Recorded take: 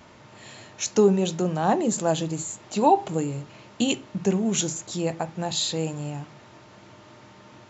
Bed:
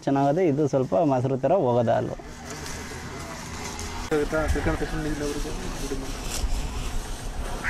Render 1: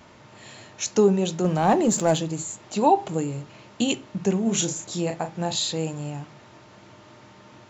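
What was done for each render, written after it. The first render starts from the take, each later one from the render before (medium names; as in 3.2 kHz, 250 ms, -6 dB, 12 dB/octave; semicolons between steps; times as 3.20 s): 1.44–2.18 s: waveshaping leveller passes 1; 4.43–5.59 s: doubling 35 ms -7 dB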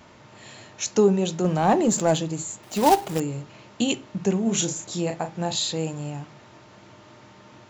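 2.63–3.20 s: companded quantiser 4-bit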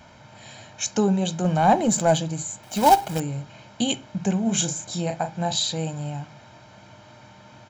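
comb 1.3 ms, depth 56%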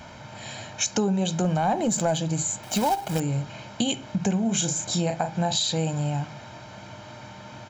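in parallel at -0.5 dB: peak limiter -16 dBFS, peak gain reduction 12 dB; on the sum: compression 4:1, threshold -22 dBFS, peak gain reduction 12 dB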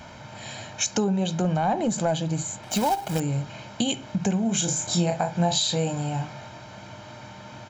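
1.04–2.71 s: distance through air 62 m; 4.65–6.48 s: doubling 23 ms -6 dB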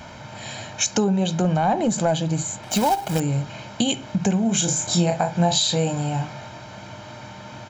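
trim +3.5 dB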